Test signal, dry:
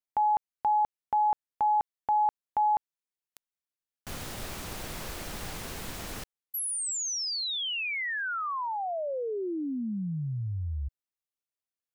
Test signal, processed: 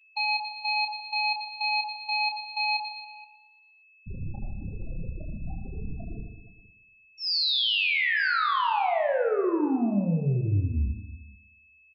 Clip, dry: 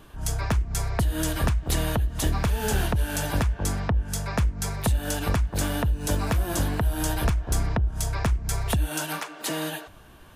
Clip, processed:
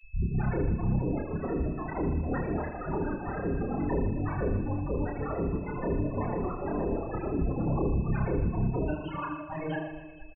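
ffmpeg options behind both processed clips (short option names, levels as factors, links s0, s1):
-filter_complex "[0:a]aeval=exprs='0.0266*(abs(mod(val(0)/0.0266+3,4)-2)-1)':c=same,aresample=11025,aresample=44100,afftfilt=real='re*gte(hypot(re,im),0.0398)':imag='im*gte(hypot(re,im),0.0398)':win_size=1024:overlap=0.75,asplit=2[s0][s1];[s1]aecho=0:1:116|232|348|464|580:0.251|0.121|0.0579|0.0278|0.0133[s2];[s0][s2]amix=inputs=2:normalize=0,aeval=exprs='val(0)+0.000398*sin(2*PI*2600*n/s)':c=same,asplit=2[s3][s4];[s4]aecho=0:1:30|78|154.8|277.7|474.3:0.631|0.398|0.251|0.158|0.1[s5];[s3][s5]amix=inputs=2:normalize=0,volume=2.37"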